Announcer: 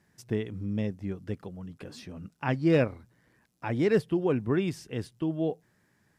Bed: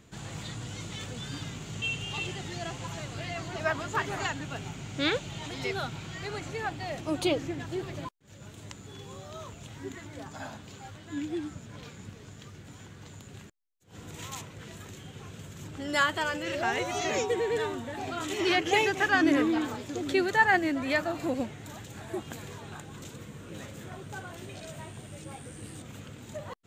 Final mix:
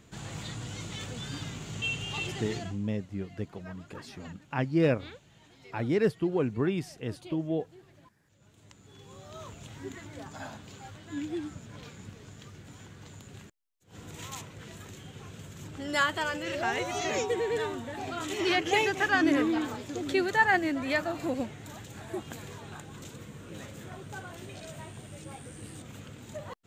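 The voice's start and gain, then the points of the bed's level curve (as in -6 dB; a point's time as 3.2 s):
2.10 s, -1.5 dB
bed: 2.56 s 0 dB
2.83 s -20 dB
8.02 s -20 dB
9.47 s -1 dB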